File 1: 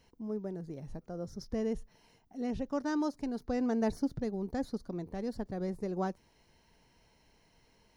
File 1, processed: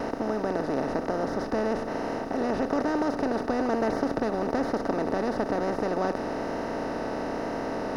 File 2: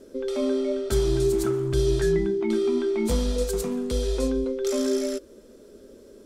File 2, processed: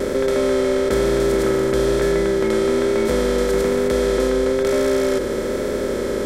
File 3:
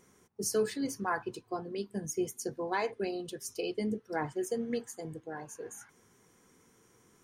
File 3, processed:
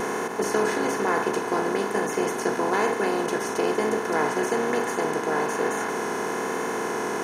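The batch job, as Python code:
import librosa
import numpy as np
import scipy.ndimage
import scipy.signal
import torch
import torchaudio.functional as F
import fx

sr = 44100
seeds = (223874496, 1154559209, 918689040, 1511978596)

y = fx.bin_compress(x, sr, power=0.2)
y = fx.vibrato(y, sr, rate_hz=1.1, depth_cents=22.0)
y = fx.bass_treble(y, sr, bass_db=-8, treble_db=-9)
y = y * 10.0 ** (2.5 / 20.0)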